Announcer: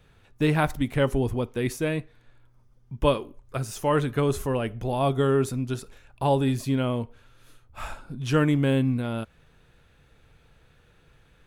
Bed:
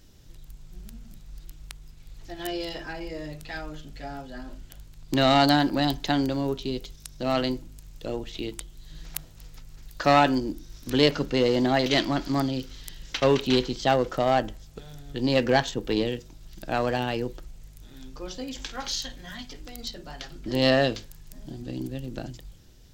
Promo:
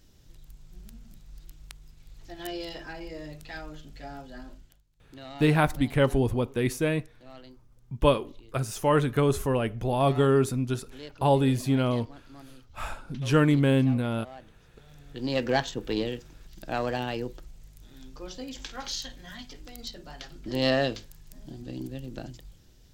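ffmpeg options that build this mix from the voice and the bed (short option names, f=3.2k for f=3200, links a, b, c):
-filter_complex "[0:a]adelay=5000,volume=0.5dB[a];[1:a]volume=16dB,afade=t=out:st=4.44:d=0.38:silence=0.105925,afade=t=in:st=14.43:d=1.16:silence=0.1[b];[a][b]amix=inputs=2:normalize=0"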